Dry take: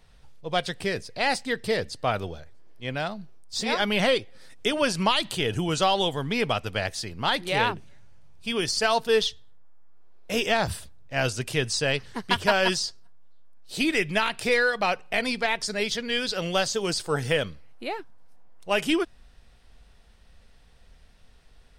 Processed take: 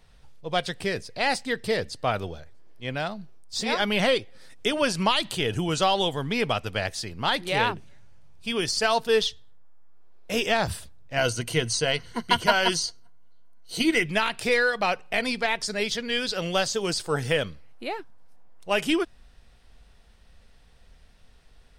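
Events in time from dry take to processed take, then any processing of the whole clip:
11.17–14.06 s: rippled EQ curve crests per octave 1.9, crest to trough 10 dB

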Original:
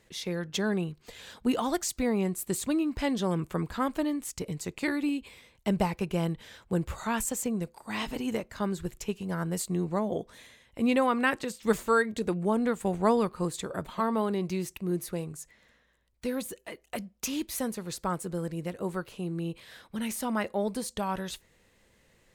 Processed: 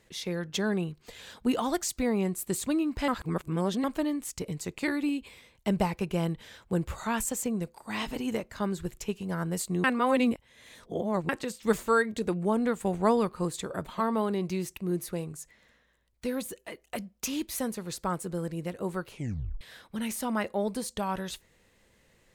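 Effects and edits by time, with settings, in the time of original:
3.08–3.84 s: reverse
9.84–11.29 s: reverse
19.11 s: tape stop 0.50 s

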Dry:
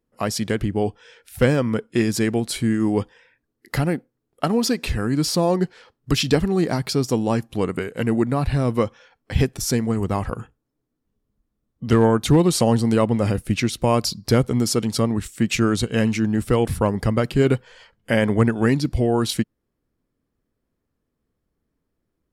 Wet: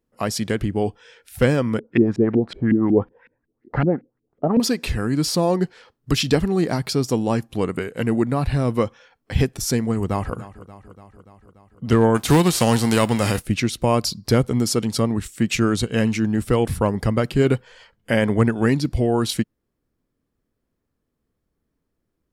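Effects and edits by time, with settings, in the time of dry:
1.79–4.60 s: LFO low-pass saw up 5.4 Hz 220–2500 Hz
9.97–10.37 s: echo throw 290 ms, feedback 70%, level -16.5 dB
12.14–13.44 s: formants flattened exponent 0.6

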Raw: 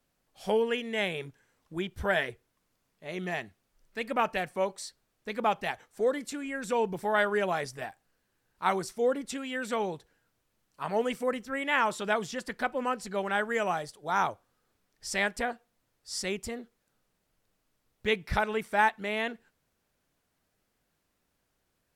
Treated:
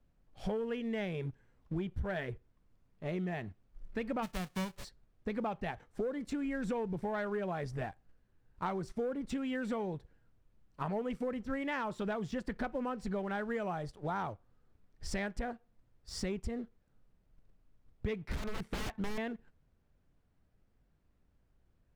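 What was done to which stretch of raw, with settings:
4.22–4.83 s: formants flattened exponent 0.1
18.24–19.18 s: integer overflow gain 28 dB
whole clip: RIAA curve playback; waveshaping leveller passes 1; compression 10:1, threshold -31 dBFS; trim -2 dB

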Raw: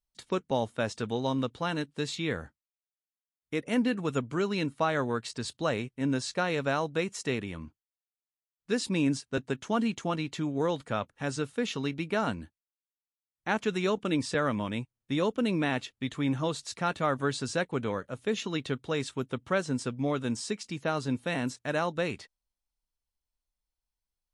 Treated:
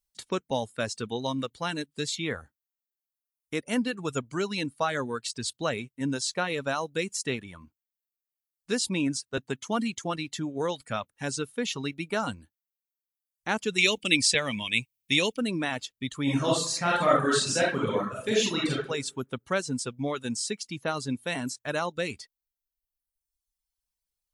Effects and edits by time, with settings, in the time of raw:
13.78–15.38 s: resonant high shelf 1.8 kHz +8.5 dB, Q 3
16.23–18.74 s: reverb throw, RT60 0.82 s, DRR -6 dB
whole clip: reverb removal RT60 1.3 s; treble shelf 4.1 kHz +10 dB

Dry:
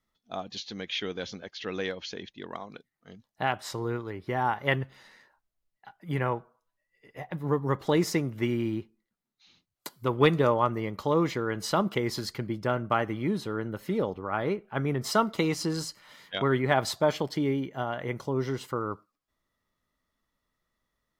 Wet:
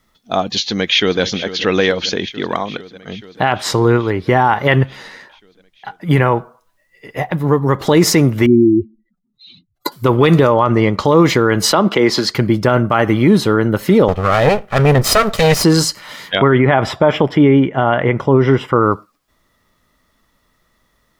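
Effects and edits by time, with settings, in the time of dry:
0.63–1.21 s: echo throw 440 ms, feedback 75%, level -14 dB
2.72–6.11 s: treble shelf 11 kHz -9 dB
7.26–7.88 s: compression 1.5:1, threshold -39 dBFS
8.46–9.92 s: spectral contrast enhancement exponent 2.7
10.52–11.05 s: low-pass 7 kHz
11.72–12.35 s: three-band isolator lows -14 dB, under 190 Hz, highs -14 dB, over 6.3 kHz
14.08–15.64 s: comb filter that takes the minimum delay 1.6 ms
16.35–18.84 s: Savitzky-Golay filter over 25 samples
whole clip: loudness maximiser +20.5 dB; trim -1 dB

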